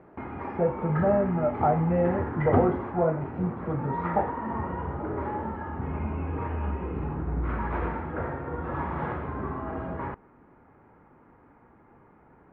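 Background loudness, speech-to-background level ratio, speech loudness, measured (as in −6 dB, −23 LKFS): −32.5 LKFS, 5.0 dB, −27.5 LKFS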